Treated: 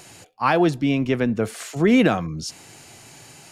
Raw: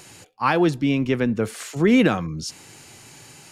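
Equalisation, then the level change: bell 680 Hz +6.5 dB 0.27 oct; 0.0 dB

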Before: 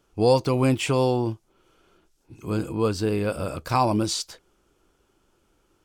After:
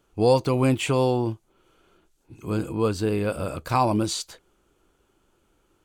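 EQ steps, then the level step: bell 5300 Hz -7 dB 0.24 oct; 0.0 dB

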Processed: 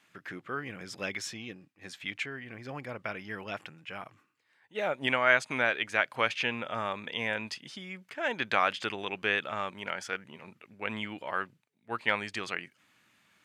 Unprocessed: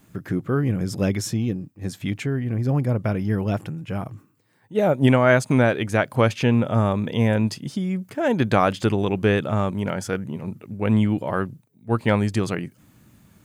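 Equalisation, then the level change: band-pass 2400 Hz, Q 1.1; +1.0 dB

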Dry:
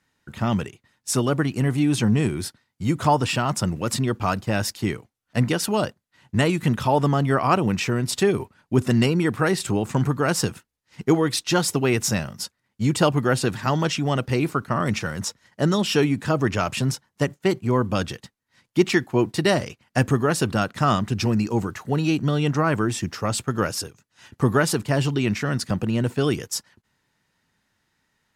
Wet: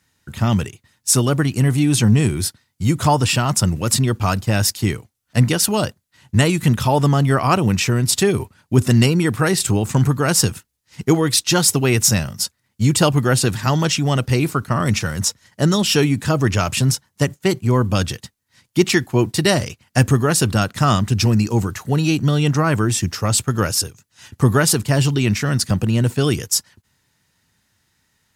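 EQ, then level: bell 85 Hz +8.5 dB 1.7 oct; high shelf 3900 Hz +11 dB; +1.5 dB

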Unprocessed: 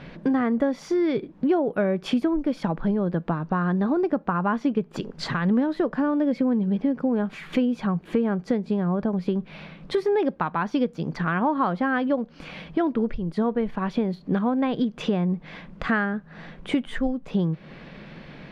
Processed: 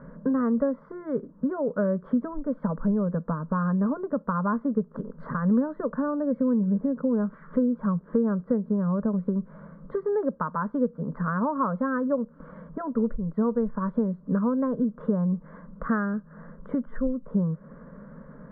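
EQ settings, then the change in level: LPF 1400 Hz 24 dB/oct; fixed phaser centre 510 Hz, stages 8; 0.0 dB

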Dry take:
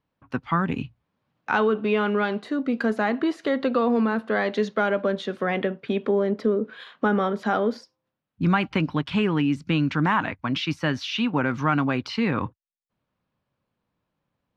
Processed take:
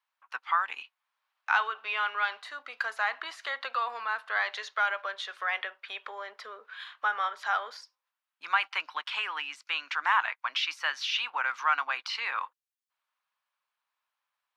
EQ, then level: HPF 950 Hz 24 dB/oct; 0.0 dB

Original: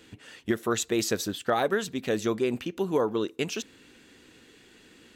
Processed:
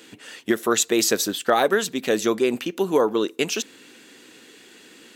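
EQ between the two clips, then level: HPF 220 Hz 12 dB/oct; high shelf 5600 Hz +5.5 dB; +6.5 dB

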